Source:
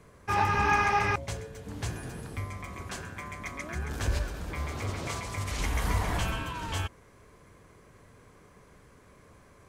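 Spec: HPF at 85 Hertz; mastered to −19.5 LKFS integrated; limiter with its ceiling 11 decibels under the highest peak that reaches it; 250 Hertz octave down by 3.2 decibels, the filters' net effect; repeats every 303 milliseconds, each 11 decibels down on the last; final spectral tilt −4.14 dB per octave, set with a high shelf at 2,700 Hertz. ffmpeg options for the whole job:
ffmpeg -i in.wav -af "highpass=85,equalizer=frequency=250:width_type=o:gain=-4.5,highshelf=frequency=2700:gain=5,alimiter=limit=-23dB:level=0:latency=1,aecho=1:1:303|606|909:0.282|0.0789|0.0221,volume=15dB" out.wav

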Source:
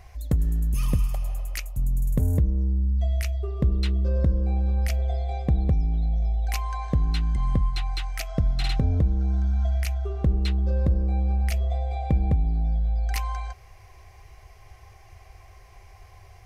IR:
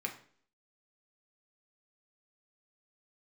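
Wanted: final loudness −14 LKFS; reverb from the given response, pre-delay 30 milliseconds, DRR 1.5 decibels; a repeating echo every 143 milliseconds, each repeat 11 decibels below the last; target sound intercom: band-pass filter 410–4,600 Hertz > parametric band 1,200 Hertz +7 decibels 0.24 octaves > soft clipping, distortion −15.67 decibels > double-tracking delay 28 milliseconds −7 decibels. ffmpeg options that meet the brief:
-filter_complex "[0:a]aecho=1:1:143|286|429:0.282|0.0789|0.0221,asplit=2[link_01][link_02];[1:a]atrim=start_sample=2205,adelay=30[link_03];[link_02][link_03]afir=irnorm=-1:irlink=0,volume=-3.5dB[link_04];[link_01][link_04]amix=inputs=2:normalize=0,highpass=410,lowpass=4600,equalizer=frequency=1200:width_type=o:width=0.24:gain=7,asoftclip=threshold=-28dB,asplit=2[link_05][link_06];[link_06]adelay=28,volume=-7dB[link_07];[link_05][link_07]amix=inputs=2:normalize=0,volume=23dB"

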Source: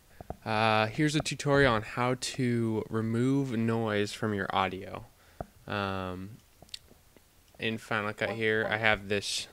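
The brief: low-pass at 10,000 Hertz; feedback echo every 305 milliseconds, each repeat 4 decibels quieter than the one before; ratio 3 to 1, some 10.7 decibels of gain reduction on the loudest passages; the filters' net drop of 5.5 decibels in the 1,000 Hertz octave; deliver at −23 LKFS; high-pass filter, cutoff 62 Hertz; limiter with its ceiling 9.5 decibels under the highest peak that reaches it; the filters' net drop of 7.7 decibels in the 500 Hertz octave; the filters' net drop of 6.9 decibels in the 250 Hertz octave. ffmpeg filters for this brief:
ffmpeg -i in.wav -af "highpass=62,lowpass=10000,equalizer=frequency=250:width_type=o:gain=-6.5,equalizer=frequency=500:width_type=o:gain=-6.5,equalizer=frequency=1000:width_type=o:gain=-5,acompressor=threshold=-37dB:ratio=3,alimiter=level_in=4.5dB:limit=-24dB:level=0:latency=1,volume=-4.5dB,aecho=1:1:305|610|915|1220|1525|1830|2135|2440|2745:0.631|0.398|0.25|0.158|0.0994|0.0626|0.0394|0.0249|0.0157,volume=17dB" out.wav

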